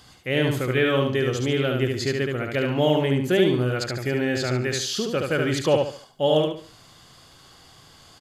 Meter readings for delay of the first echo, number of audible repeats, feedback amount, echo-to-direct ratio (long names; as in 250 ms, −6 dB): 72 ms, 4, 32%, −3.0 dB